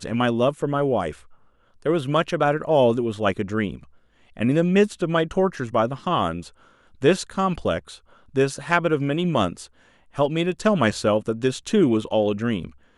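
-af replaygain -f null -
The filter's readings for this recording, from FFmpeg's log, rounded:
track_gain = +2.5 dB
track_peak = 0.491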